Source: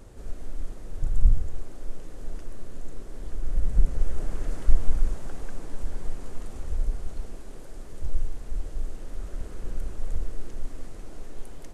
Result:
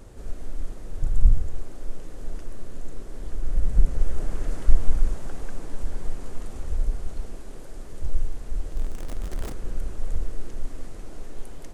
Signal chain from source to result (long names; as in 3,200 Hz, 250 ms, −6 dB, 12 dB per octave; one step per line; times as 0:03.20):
0:08.72–0:09.54: converter with a step at zero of −33.5 dBFS
level +2 dB